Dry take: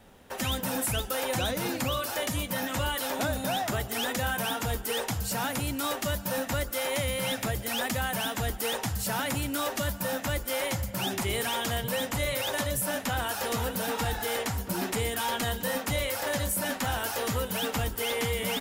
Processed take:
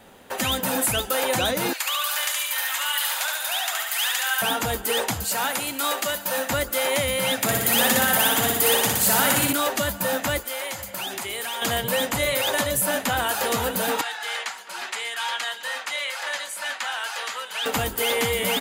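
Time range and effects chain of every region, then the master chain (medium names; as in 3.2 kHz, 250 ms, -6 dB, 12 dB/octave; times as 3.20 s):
1.73–4.42 s: Bessel high-pass 1.4 kHz, order 4 + feedback delay 71 ms, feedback 56%, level -3 dB
5.24–6.50 s: high-pass 550 Hz 6 dB/octave + flutter echo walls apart 11.8 m, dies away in 0.29 s
7.42–9.53 s: high-pass 95 Hz 24 dB/octave + treble shelf 7.5 kHz +7 dB + flutter echo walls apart 10.4 m, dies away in 1.1 s
10.40–11.62 s: bass shelf 350 Hz -12 dB + compression 3:1, threshold -35 dBFS
14.01–17.66 s: high-pass 1.2 kHz + distance through air 75 m
whole clip: bass shelf 140 Hz -12 dB; band-stop 5.5 kHz, Q 11; trim +7.5 dB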